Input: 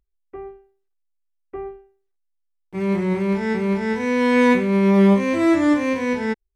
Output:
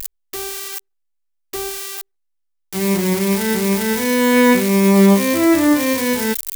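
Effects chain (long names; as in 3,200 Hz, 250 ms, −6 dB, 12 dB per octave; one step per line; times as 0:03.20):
spike at every zero crossing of −13.5 dBFS
level +3 dB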